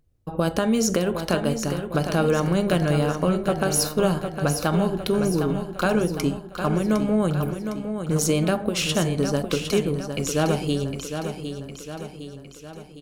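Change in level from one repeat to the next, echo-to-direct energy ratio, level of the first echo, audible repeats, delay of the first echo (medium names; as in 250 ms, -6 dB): -5.5 dB, -6.5 dB, -8.0 dB, 5, 758 ms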